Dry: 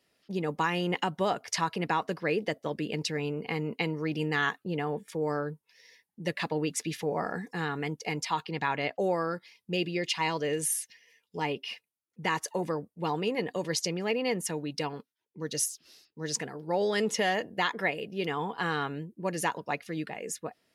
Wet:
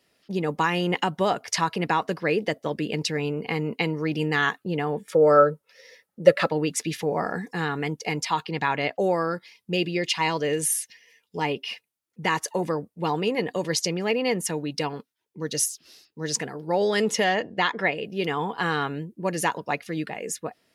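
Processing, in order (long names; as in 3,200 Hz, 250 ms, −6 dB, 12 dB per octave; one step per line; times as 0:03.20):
0:05.10–0:06.50: hollow resonant body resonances 550/1,300 Hz, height 18 dB, ringing for 35 ms
0:17.24–0:18.05: low-pass filter 5,600 Hz 12 dB per octave
level +5 dB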